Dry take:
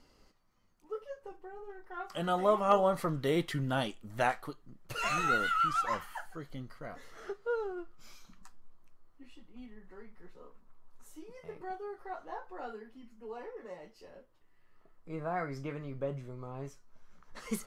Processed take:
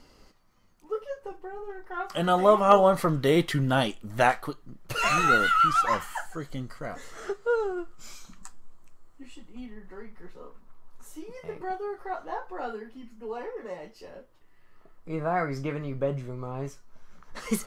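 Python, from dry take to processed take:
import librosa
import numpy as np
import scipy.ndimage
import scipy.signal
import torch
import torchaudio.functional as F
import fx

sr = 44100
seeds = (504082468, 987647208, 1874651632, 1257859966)

y = fx.peak_eq(x, sr, hz=7600.0, db=10.0, octaves=0.42, at=(6.0, 9.61))
y = y * librosa.db_to_amplitude(8.0)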